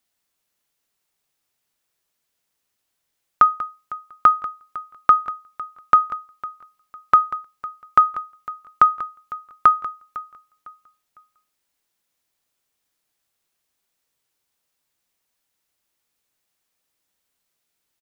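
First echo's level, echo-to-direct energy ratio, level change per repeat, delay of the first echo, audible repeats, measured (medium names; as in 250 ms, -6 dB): -18.5 dB, -18.0 dB, -10.0 dB, 504 ms, 2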